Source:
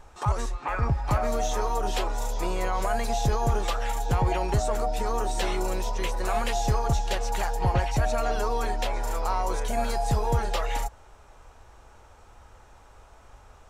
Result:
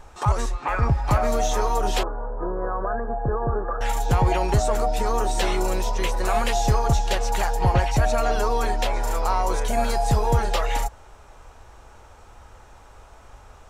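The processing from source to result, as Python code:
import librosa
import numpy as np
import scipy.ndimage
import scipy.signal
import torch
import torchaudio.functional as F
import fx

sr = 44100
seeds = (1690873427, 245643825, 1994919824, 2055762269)

y = fx.cheby_ripple(x, sr, hz=1700.0, ripple_db=6, at=(2.03, 3.81))
y = F.gain(torch.from_numpy(y), 4.5).numpy()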